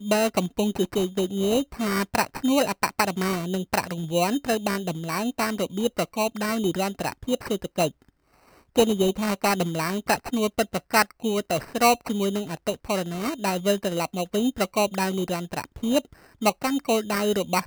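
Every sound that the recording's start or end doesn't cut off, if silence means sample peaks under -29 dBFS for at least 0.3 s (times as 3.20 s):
8.76–16.00 s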